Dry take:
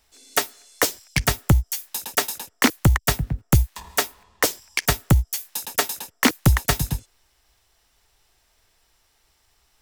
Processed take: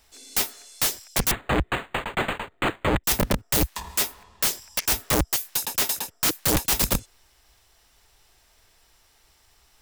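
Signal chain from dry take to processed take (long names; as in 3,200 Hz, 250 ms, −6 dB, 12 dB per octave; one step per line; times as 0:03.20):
wrap-around overflow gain 19 dB
0:01.31–0:03.04: linearly interpolated sample-rate reduction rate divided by 8×
level +4 dB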